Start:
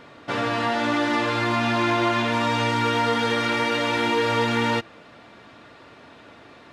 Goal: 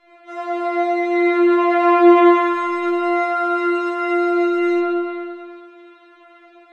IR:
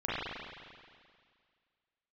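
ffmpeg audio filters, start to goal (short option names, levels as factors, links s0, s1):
-filter_complex "[1:a]atrim=start_sample=2205[s0];[0:a][s0]afir=irnorm=-1:irlink=0,afftfilt=real='re*4*eq(mod(b,16),0)':imag='im*4*eq(mod(b,16),0)':win_size=2048:overlap=0.75,volume=0.447"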